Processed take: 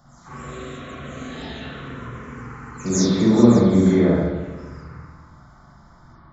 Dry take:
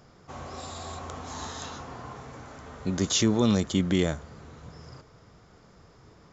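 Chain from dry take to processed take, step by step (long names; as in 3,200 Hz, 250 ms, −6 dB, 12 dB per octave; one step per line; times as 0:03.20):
every frequency bin delayed by itself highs early, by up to 217 ms
phaser swept by the level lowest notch 400 Hz, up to 2,900 Hz, full sweep at −28 dBFS
spring reverb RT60 1.3 s, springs 42/50 ms, chirp 20 ms, DRR −7 dB
level +2.5 dB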